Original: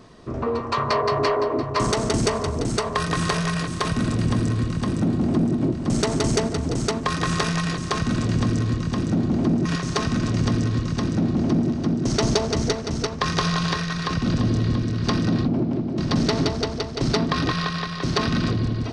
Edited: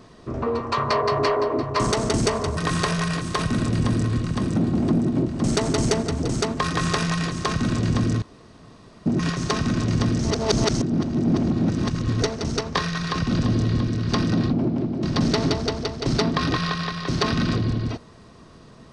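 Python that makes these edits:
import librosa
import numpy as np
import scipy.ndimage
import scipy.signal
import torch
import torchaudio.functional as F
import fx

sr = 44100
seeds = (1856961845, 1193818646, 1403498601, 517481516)

y = fx.edit(x, sr, fx.cut(start_s=2.57, length_s=0.46),
    fx.room_tone_fill(start_s=8.68, length_s=0.84),
    fx.reverse_span(start_s=10.65, length_s=2.03),
    fx.cut(start_s=13.23, length_s=0.49), tone=tone)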